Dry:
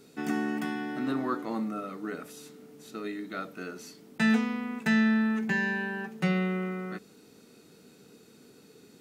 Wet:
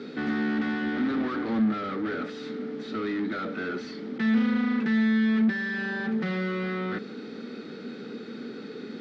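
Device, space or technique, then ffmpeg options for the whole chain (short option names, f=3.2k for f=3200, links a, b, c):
overdrive pedal into a guitar cabinet: -filter_complex "[0:a]asplit=2[a][b];[b]highpass=f=720:p=1,volume=37dB,asoftclip=type=tanh:threshold=-14.5dB[c];[a][c]amix=inputs=2:normalize=0,lowpass=f=1.9k:p=1,volume=-6dB,highpass=85,equalizer=f=230:t=q:w=4:g=10,equalizer=f=680:t=q:w=4:g=-8,equalizer=f=990:t=q:w=4:g=-10,equalizer=f=2.7k:t=q:w=4:g=-8,lowpass=f=4.2k:w=0.5412,lowpass=f=4.2k:w=1.3066,volume=-7.5dB"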